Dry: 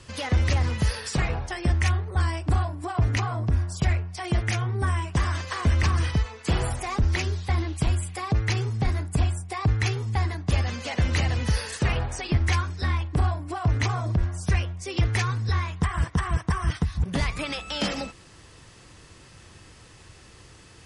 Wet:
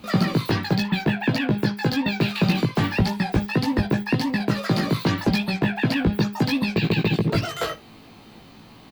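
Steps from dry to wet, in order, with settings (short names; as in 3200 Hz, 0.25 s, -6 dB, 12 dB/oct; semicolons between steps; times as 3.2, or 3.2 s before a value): band shelf 4000 Hz -14 dB; doubler 42 ms -3 dB; on a send: echo 0.136 s -19 dB; on the sum: speed mistake 33 rpm record played at 78 rpm; gain +2 dB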